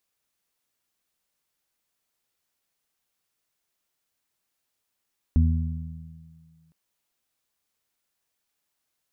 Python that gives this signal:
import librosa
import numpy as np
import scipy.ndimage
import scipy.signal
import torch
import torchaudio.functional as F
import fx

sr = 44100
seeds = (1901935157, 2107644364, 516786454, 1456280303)

y = fx.additive(sr, length_s=1.36, hz=80.8, level_db=-14.5, upper_db=(-10.5, -9.0), decay_s=1.48, upper_decays_s=(2.38, 1.3))